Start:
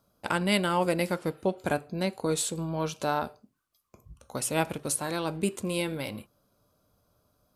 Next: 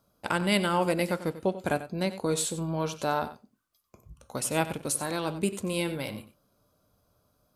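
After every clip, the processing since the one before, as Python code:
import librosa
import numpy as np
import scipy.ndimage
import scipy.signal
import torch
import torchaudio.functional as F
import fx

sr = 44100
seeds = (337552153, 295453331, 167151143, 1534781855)

y = x + 10.0 ** (-13.5 / 20.0) * np.pad(x, (int(93 * sr / 1000.0), 0))[:len(x)]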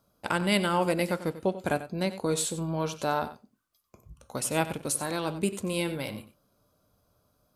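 y = x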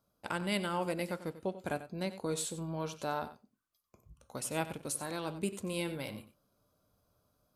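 y = fx.rider(x, sr, range_db=10, speed_s=2.0)
y = y * 10.0 ** (-8.0 / 20.0)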